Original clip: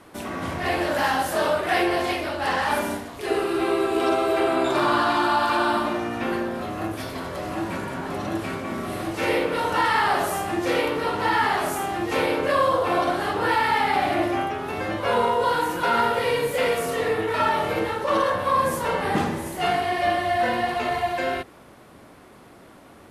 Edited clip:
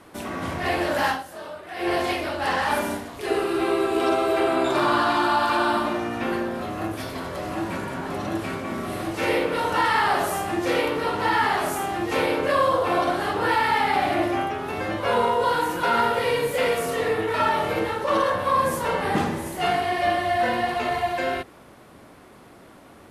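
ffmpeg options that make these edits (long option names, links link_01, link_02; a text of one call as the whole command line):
ffmpeg -i in.wav -filter_complex "[0:a]asplit=3[link_01][link_02][link_03];[link_01]atrim=end=1.26,asetpts=PTS-STARTPTS,afade=type=out:start_time=1.1:duration=0.16:curve=qua:silence=0.188365[link_04];[link_02]atrim=start=1.26:end=1.73,asetpts=PTS-STARTPTS,volume=-14.5dB[link_05];[link_03]atrim=start=1.73,asetpts=PTS-STARTPTS,afade=type=in:duration=0.16:curve=qua:silence=0.188365[link_06];[link_04][link_05][link_06]concat=n=3:v=0:a=1" out.wav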